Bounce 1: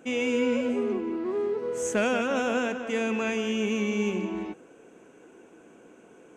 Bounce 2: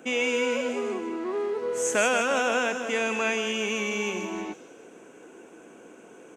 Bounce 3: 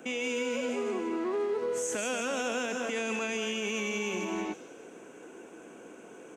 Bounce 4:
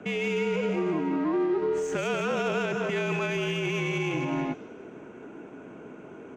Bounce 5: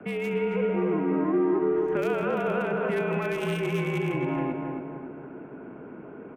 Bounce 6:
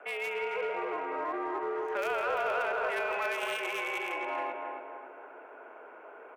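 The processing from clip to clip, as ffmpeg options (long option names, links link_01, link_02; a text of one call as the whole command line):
ffmpeg -i in.wav -filter_complex "[0:a]lowshelf=frequency=130:gain=-10.5,acrossover=split=510|3800[link_01][link_02][link_03];[link_01]acompressor=threshold=-38dB:ratio=6[link_04];[link_03]asplit=7[link_05][link_06][link_07][link_08][link_09][link_10][link_11];[link_06]adelay=156,afreqshift=-42,volume=-3dB[link_12];[link_07]adelay=312,afreqshift=-84,volume=-9.4dB[link_13];[link_08]adelay=468,afreqshift=-126,volume=-15.8dB[link_14];[link_09]adelay=624,afreqshift=-168,volume=-22.1dB[link_15];[link_10]adelay=780,afreqshift=-210,volume=-28.5dB[link_16];[link_11]adelay=936,afreqshift=-252,volume=-34.9dB[link_17];[link_05][link_12][link_13][link_14][link_15][link_16][link_17]amix=inputs=7:normalize=0[link_18];[link_04][link_02][link_18]amix=inputs=3:normalize=0,volume=5dB" out.wav
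ffmpeg -i in.wav -filter_complex "[0:a]acrossover=split=440|3000[link_01][link_02][link_03];[link_02]acompressor=threshold=-32dB:ratio=6[link_04];[link_01][link_04][link_03]amix=inputs=3:normalize=0,alimiter=limit=-24dB:level=0:latency=1" out.wav
ffmpeg -i in.wav -af "afreqshift=-51,adynamicsmooth=sensitivity=2.5:basefreq=2800,equalizer=frequency=9900:width=1.5:gain=-2,volume=5dB" out.wav
ffmpeg -i in.wav -filter_complex "[0:a]acrossover=split=320|1000|2500[link_01][link_02][link_03][link_04];[link_04]acrusher=bits=4:mix=0:aa=0.5[link_05];[link_01][link_02][link_03][link_05]amix=inputs=4:normalize=0,asplit=2[link_06][link_07];[link_07]adelay=272,lowpass=frequency=1800:poles=1,volume=-4dB,asplit=2[link_08][link_09];[link_09]adelay=272,lowpass=frequency=1800:poles=1,volume=0.52,asplit=2[link_10][link_11];[link_11]adelay=272,lowpass=frequency=1800:poles=1,volume=0.52,asplit=2[link_12][link_13];[link_13]adelay=272,lowpass=frequency=1800:poles=1,volume=0.52,asplit=2[link_14][link_15];[link_15]adelay=272,lowpass=frequency=1800:poles=1,volume=0.52,asplit=2[link_16][link_17];[link_17]adelay=272,lowpass=frequency=1800:poles=1,volume=0.52,asplit=2[link_18][link_19];[link_19]adelay=272,lowpass=frequency=1800:poles=1,volume=0.52[link_20];[link_06][link_08][link_10][link_12][link_14][link_16][link_18][link_20]amix=inputs=8:normalize=0" out.wav
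ffmpeg -i in.wav -filter_complex "[0:a]highpass=frequency=570:width=0.5412,highpass=frequency=570:width=1.3066,asplit=2[link_01][link_02];[link_02]volume=30.5dB,asoftclip=hard,volume=-30.5dB,volume=-5.5dB[link_03];[link_01][link_03]amix=inputs=2:normalize=0,volume=-2dB" out.wav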